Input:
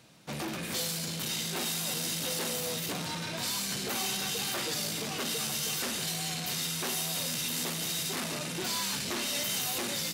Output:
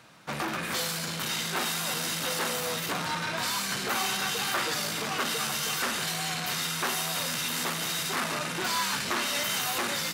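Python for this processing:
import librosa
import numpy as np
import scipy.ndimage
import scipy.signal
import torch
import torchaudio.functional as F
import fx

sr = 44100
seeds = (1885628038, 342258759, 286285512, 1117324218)

y = fx.peak_eq(x, sr, hz=1300.0, db=11.0, octaves=1.7)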